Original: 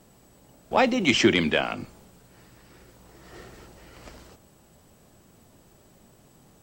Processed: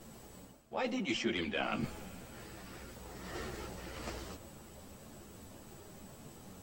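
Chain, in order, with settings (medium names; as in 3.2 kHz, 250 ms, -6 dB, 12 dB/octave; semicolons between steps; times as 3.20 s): reverse; compression 6:1, threshold -37 dBFS, peak gain reduction 22 dB; reverse; reverberation RT60 4.6 s, pre-delay 184 ms, DRR 17.5 dB; three-phase chorus; trim +6.5 dB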